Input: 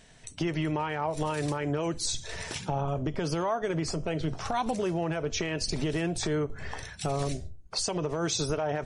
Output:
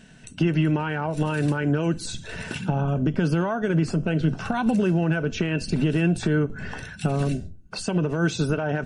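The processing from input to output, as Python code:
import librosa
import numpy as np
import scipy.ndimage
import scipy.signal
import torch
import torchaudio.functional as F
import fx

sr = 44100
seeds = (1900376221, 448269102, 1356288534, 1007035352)

y = fx.dynamic_eq(x, sr, hz=5800.0, q=1.6, threshold_db=-49.0, ratio=4.0, max_db=-7)
y = fx.small_body(y, sr, hz=(200.0, 1500.0, 2700.0), ring_ms=25, db=14)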